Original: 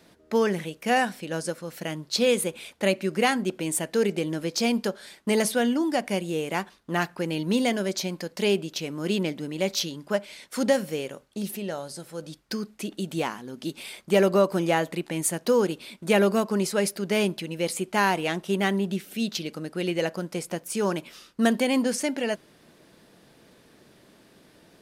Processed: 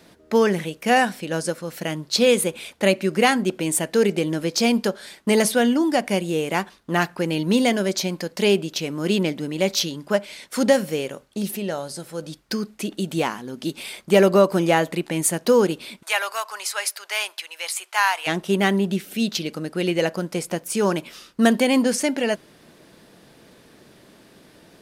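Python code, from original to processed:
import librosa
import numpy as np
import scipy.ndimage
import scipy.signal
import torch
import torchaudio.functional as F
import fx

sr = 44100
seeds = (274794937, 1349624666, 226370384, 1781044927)

y = fx.highpass(x, sr, hz=860.0, slope=24, at=(16.01, 18.26), fade=0.02)
y = y * librosa.db_to_amplitude(5.0)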